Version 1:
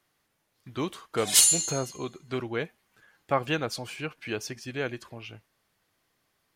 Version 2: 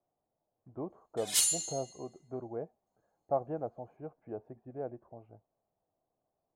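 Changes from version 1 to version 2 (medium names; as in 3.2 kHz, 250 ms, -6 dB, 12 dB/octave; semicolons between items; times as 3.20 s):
speech: add four-pole ladder low-pass 790 Hz, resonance 60%; background -8.5 dB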